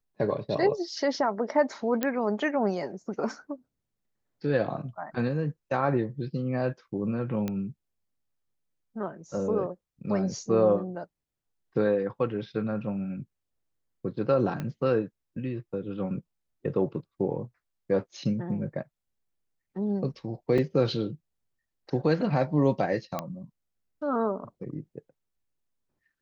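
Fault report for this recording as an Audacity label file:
2.030000	2.030000	pop -12 dBFS
7.480000	7.480000	pop -18 dBFS
14.600000	14.600000	pop -20 dBFS
20.580000	20.580000	gap 4.4 ms
23.190000	23.190000	pop -16 dBFS

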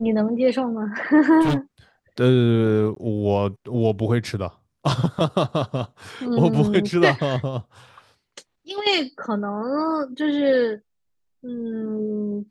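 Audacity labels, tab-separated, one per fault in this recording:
1.410000	1.570000	clipped -16.5 dBFS
2.950000	2.960000	gap

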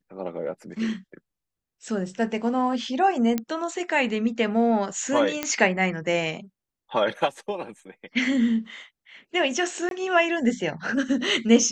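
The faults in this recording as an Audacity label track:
3.380000	3.380000	pop -12 dBFS
5.430000	5.430000	pop -9 dBFS
9.890000	9.910000	gap 22 ms

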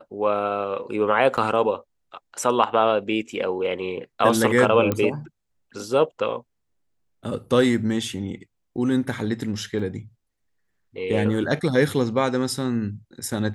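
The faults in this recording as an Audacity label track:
1.370000	1.380000	gap 7.1 ms
4.920000	4.920000	pop -10 dBFS
9.790000	9.790000	gap 3.8 ms

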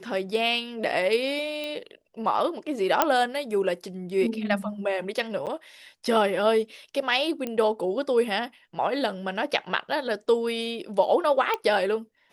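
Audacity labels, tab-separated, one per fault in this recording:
1.640000	1.640000	pop -20 dBFS
3.020000	3.020000	pop -4 dBFS
5.460000	5.470000	gap 8 ms
7.470000	7.470000	pop -17 dBFS
11.540000	11.540000	pop -13 dBFS

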